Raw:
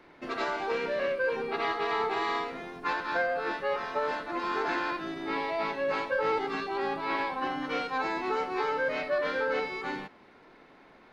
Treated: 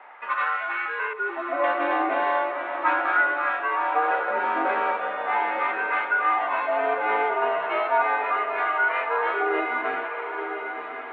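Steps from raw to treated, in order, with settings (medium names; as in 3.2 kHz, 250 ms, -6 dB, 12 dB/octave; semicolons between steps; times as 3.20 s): 1.13–1.64 s: spectral contrast enhancement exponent 2; in parallel at +0.5 dB: compression, threshold -37 dBFS, peak gain reduction 12.5 dB; on the sum: LFO high-pass sine 0.38 Hz 530–1500 Hz; echo that smears into a reverb 1072 ms, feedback 46%, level -7 dB; mistuned SSB -120 Hz 480–3000 Hz; trim +1.5 dB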